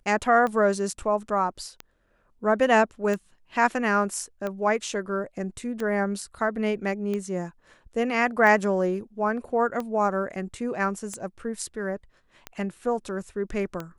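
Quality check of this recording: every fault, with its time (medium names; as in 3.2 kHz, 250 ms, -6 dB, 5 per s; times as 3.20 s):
tick 45 rpm -18 dBFS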